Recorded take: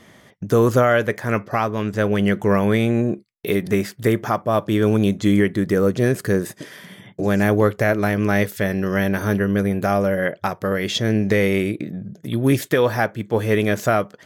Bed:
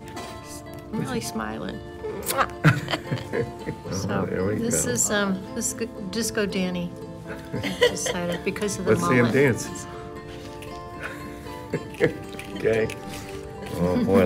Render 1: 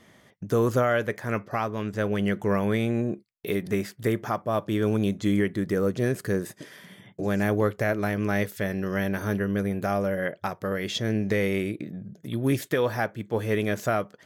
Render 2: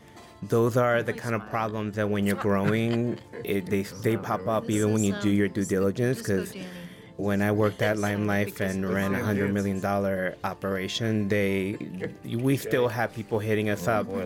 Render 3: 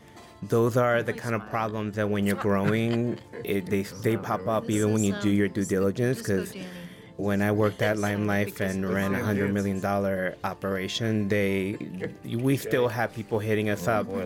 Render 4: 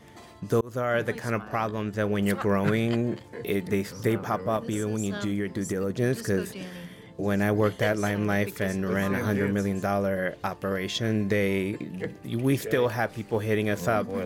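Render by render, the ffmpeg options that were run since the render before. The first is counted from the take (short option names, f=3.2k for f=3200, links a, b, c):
-af "volume=-7dB"
-filter_complex "[1:a]volume=-13dB[a];[0:a][a]amix=inputs=2:normalize=0"
-af anull
-filter_complex "[0:a]asettb=1/sr,asplit=3[a][b][c];[a]atrim=end=4.564[d];[b]atrim=start=4.56:end=5.9,asetpts=PTS-STARTPTS,afade=t=in:d=0.004:c=qsin,afade=t=out:st=1.336:d=0.004:c=qsin,acompressor=threshold=-24dB:ratio=6:attack=3.2:release=140:knee=1:detection=peak[e];[c]atrim=start=5.896[f];[d][e]acrossfade=d=0.004:c1=hsin:c2=qsin[g];[g][f]acrossfade=d=0.004:c1=qsin:c2=hsin,asplit=2[h][i];[h]atrim=end=0.61,asetpts=PTS-STARTPTS,afade=t=out:st=0.606:d=0.004:c=hsin[j];[i]atrim=start=0.61,asetpts=PTS-STARTPTS,afade=t=in:d=0.4[k];[j][k]concat=n=2:v=0:a=1"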